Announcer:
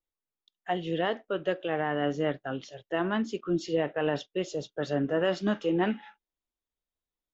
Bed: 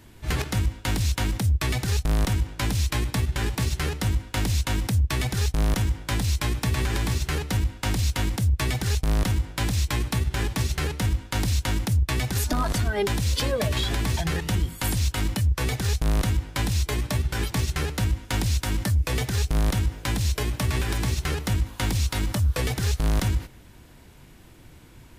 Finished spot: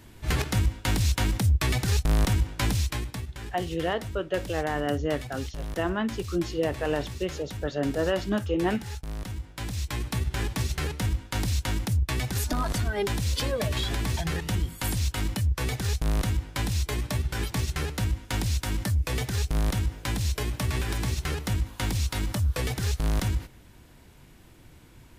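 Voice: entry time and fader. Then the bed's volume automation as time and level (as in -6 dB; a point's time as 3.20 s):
2.85 s, +0.5 dB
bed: 2.70 s 0 dB
3.31 s -12.5 dB
9.21 s -12.5 dB
10.25 s -3 dB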